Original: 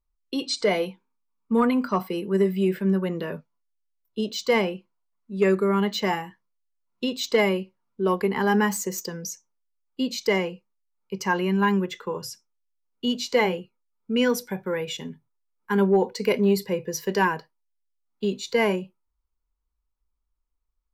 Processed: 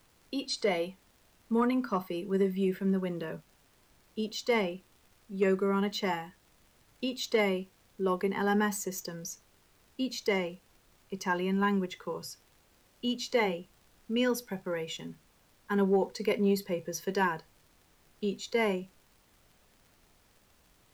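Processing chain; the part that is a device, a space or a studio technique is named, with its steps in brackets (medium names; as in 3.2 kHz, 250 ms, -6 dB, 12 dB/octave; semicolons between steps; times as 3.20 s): vinyl LP (crackle; pink noise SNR 32 dB); trim -6.5 dB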